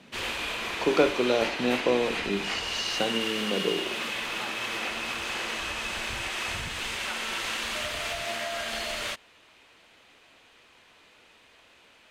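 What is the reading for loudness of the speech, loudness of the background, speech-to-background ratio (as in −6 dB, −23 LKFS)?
−28.5 LKFS, −30.5 LKFS, 2.0 dB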